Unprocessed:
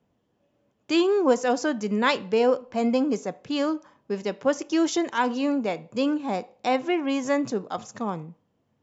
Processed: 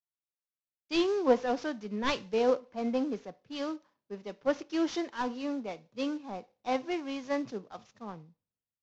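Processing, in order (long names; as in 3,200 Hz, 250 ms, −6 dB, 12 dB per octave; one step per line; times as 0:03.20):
variable-slope delta modulation 32 kbit/s
multiband upward and downward expander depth 100%
level −8 dB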